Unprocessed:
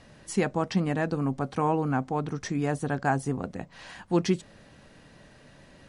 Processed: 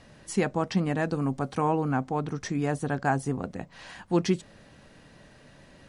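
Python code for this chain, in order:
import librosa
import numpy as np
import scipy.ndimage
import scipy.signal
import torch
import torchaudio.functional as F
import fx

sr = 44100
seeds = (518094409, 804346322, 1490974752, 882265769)

y = fx.high_shelf(x, sr, hz=6000.0, db=5.5, at=(0.99, 1.61))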